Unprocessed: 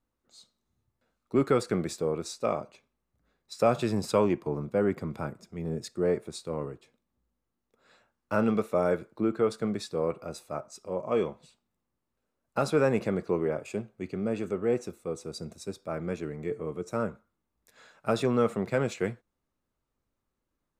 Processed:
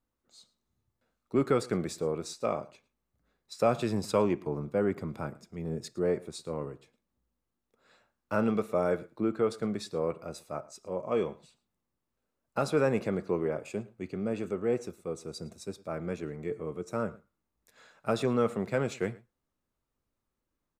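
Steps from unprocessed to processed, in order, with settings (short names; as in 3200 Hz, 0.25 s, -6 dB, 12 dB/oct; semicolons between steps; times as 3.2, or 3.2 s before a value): echo 0.11 s -22 dB; gain -2 dB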